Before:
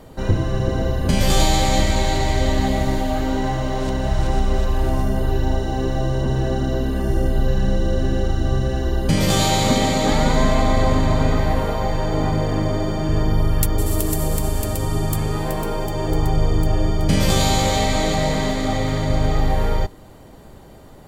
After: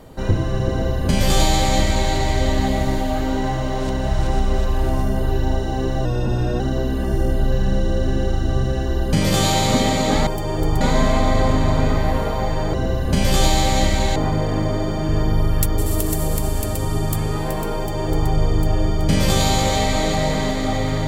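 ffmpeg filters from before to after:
ffmpeg -i in.wav -filter_complex "[0:a]asplit=7[link_01][link_02][link_03][link_04][link_05][link_06][link_07];[link_01]atrim=end=6.054[link_08];[link_02]atrim=start=6.05:end=6.56,asetpts=PTS-STARTPTS,asetrate=41013,aresample=44100[link_09];[link_03]atrim=start=6.556:end=10.232[link_10];[link_04]atrim=start=15.768:end=16.312[link_11];[link_05]atrim=start=10.228:end=12.162[link_12];[link_06]atrim=start=0.698:end=2.122[link_13];[link_07]atrim=start=12.158[link_14];[link_08][link_09]acrossfade=duration=0.004:curve1=hsin:curve2=hsin[link_15];[link_15][link_10]acrossfade=duration=0.004:curve1=hsin:curve2=hsin[link_16];[link_16][link_11]acrossfade=duration=0.004:curve1=hsin:curve2=hsin[link_17];[link_17][link_12]acrossfade=duration=0.004:curve1=hsin:curve2=hsin[link_18];[link_18][link_13]acrossfade=duration=0.004:curve1=hsin:curve2=hsin[link_19];[link_19][link_14]acrossfade=duration=0.004:curve1=hsin:curve2=hsin" out.wav

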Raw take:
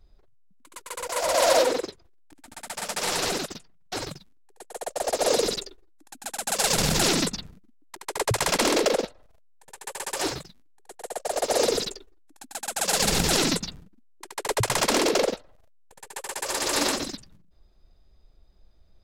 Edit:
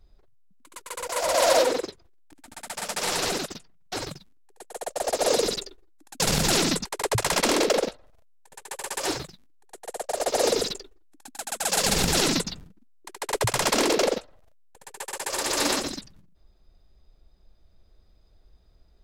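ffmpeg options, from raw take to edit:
ffmpeg -i in.wav -filter_complex "[0:a]asplit=3[link_01][link_02][link_03];[link_01]atrim=end=6.202[link_04];[link_02]atrim=start=6.708:end=7.362[link_05];[link_03]atrim=start=8.008[link_06];[link_04][link_05]acrossfade=duration=0.004:curve1=hsin:curve2=hsin[link_07];[link_07][link_06]acrossfade=duration=0.004:curve1=hsin:curve2=hsin" out.wav

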